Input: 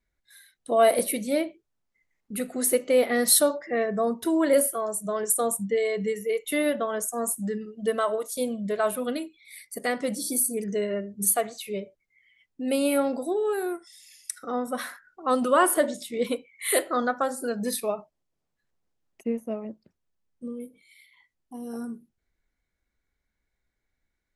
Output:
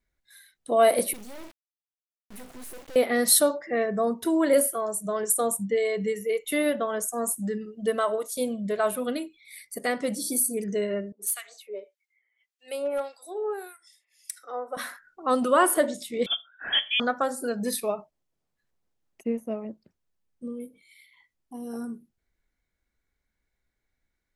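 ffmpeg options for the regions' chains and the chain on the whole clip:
ffmpeg -i in.wav -filter_complex "[0:a]asettb=1/sr,asplit=3[link_01][link_02][link_03];[link_01]atrim=end=1.134[link_04];[link_02]atrim=start=1.13:end=2.96,asetpts=PTS-STARTPTS,afade=type=in:duration=0.004:curve=qsin,afade=type=out:start_time=1.826:duration=0.004:curve=qsin,aeval=exprs='(tanh(25.1*val(0)+0.55)-tanh(0.55))/25.1':channel_layout=same,acrusher=bits=5:dc=4:mix=0:aa=0.000001[link_05];[link_03]atrim=start=2.956[link_06];[link_04][link_05]acrossfade=duration=0.004:curve1=hsin:curve2=qsin[link_07];[link_07][link_06]acrossfade=duration=0.004:curve1=qsin:curve2=hsin,asettb=1/sr,asplit=3[link_08][link_09][link_10];[link_08]atrim=end=11.124[link_11];[link_09]atrim=start=11.12:end=14.77,asetpts=PTS-STARTPTS,afade=type=in:duration=0.004:curve=qsin,afade=type=out:start_time=3.646:duration=0.004:curve=qsin,highpass=frequency=430:width=0.5412,highpass=frequency=430:width=1.3066,acrossover=split=1500[link_12][link_13];[link_12]aeval=exprs='val(0)*(1-1/2+1/2*cos(2*PI*1.7*n/s))':channel_layout=same[link_14];[link_13]aeval=exprs='val(0)*(1-1/2-1/2*cos(2*PI*1.7*n/s))':channel_layout=same[link_15];[link_14][link_15]amix=inputs=2:normalize=0,asoftclip=type=hard:threshold=-22dB[link_16];[link_10]atrim=start=14.766[link_17];[link_11][link_16]acrossfade=duration=0.004:curve1=hsin:curve2=qsin[link_18];[link_18][link_17]acrossfade=duration=0.004:curve1=qsin:curve2=hsin,asettb=1/sr,asplit=3[link_19][link_20][link_21];[link_19]atrim=end=16.264[link_22];[link_20]atrim=start=16.26:end=17,asetpts=PTS-STARTPTS,afade=type=in:duration=0.004:curve=qsin,afade=type=out:start_time=0.736:duration=0.004:curve=qsin,adynamicequalizer=threshold=0.00562:dfrequency=2800:dqfactor=1.8:tfrequency=2800:tqfactor=1.8:attack=5:release=100:ratio=0.375:range=2:mode=cutabove:tftype=bell,lowpass=frequency=3100:width_type=q:width=0.5098,lowpass=frequency=3100:width_type=q:width=0.6013,lowpass=frequency=3100:width_type=q:width=0.9,lowpass=frequency=3100:width_type=q:width=2.563,afreqshift=-3700[link_23];[link_21]atrim=start=16.996[link_24];[link_22][link_23]acrossfade=duration=0.004:curve1=hsin:curve2=qsin[link_25];[link_25][link_24]acrossfade=duration=0.004:curve1=qsin:curve2=hsin" out.wav

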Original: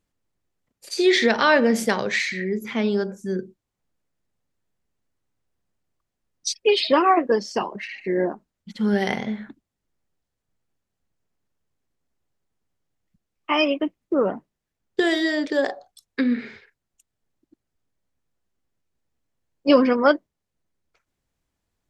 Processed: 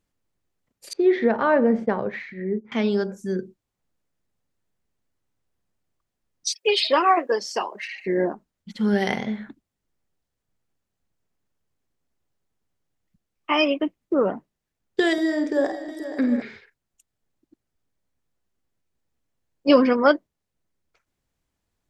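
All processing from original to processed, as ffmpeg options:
ffmpeg -i in.wav -filter_complex "[0:a]asettb=1/sr,asplit=3[link_01][link_02][link_03];[link_01]atrim=end=0.934[link_04];[link_02]atrim=start=0.93:end=2.72,asetpts=PTS-STARTPTS,afade=type=in:duration=0.004:curve=qsin,afade=type=out:start_time=1.786:duration=0.004:curve=qsin,agate=range=-33dB:threshold=-26dB:ratio=3:release=100:detection=peak,lowpass=1100[link_05];[link_03]atrim=start=2.716[link_06];[link_04][link_05]acrossfade=duration=0.004:curve1=hsin:curve2=qsin[link_07];[link_07][link_06]acrossfade=duration=0.004:curve1=qsin:curve2=hsin,asettb=1/sr,asplit=3[link_08][link_09][link_10];[link_08]atrim=end=6.524[link_11];[link_09]atrim=start=6.52:end=8.05,asetpts=PTS-STARTPTS,afade=type=in:duration=0.004:curve=qsin,afade=type=out:start_time=1.526:duration=0.004:curve=qsin,highpass=440,highshelf=frequency=8200:gain=9[link_12];[link_10]atrim=start=8.046[link_13];[link_11][link_12]acrossfade=duration=0.004:curve1=hsin:curve2=qsin[link_14];[link_14][link_13]acrossfade=duration=0.004:curve1=qsin:curve2=hsin,asettb=1/sr,asplit=3[link_15][link_16][link_17];[link_15]atrim=end=15.134[link_18];[link_16]atrim=start=15.13:end=16.42,asetpts=PTS-STARTPTS,afade=type=in:duration=0.004:curve=qsin,afade=type=out:start_time=1.286:duration=0.004:curve=qsin,equalizer=frequency=3000:width_type=o:width=1.5:gain=-12.5,bandreject=frequency=4300:width=6.5,aecho=1:1:50|197|477|594|753|889:0.398|0.126|0.237|0.112|0.224|0.106,atrim=end_sample=56889[link_19];[link_17]atrim=start=16.416[link_20];[link_18][link_19]acrossfade=duration=0.004:curve1=hsin:curve2=qsin[link_21];[link_21][link_20]acrossfade=duration=0.004:curve1=qsin:curve2=hsin" out.wav

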